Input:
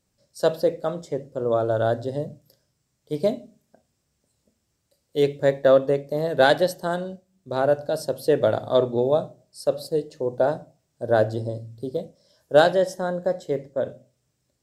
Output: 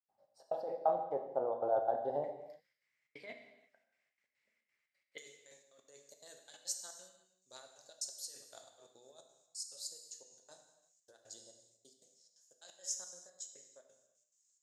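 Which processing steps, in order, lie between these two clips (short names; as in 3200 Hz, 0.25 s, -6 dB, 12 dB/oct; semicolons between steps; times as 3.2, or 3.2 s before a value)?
negative-ratio compressor -25 dBFS, ratio -1; step gate ".xx.x.xxx" 176 bpm -60 dB; band-pass 790 Hz, Q 9.2, from 2.24 s 2100 Hz, from 5.18 s 6800 Hz; non-linear reverb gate 0.38 s falling, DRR 4.5 dB; gain +6.5 dB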